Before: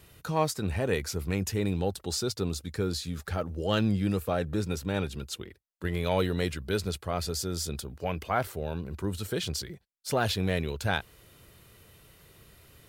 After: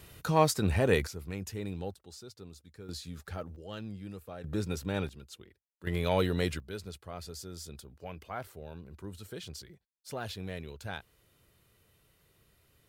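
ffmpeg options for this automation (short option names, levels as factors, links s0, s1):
-af "asetnsamples=n=441:p=0,asendcmd='1.07 volume volume -9dB;1.94 volume volume -18dB;2.89 volume volume -8dB;3.56 volume volume -15.5dB;4.44 volume volume -3dB;5.09 volume volume -12dB;5.87 volume volume -1dB;6.6 volume volume -11.5dB',volume=1.33"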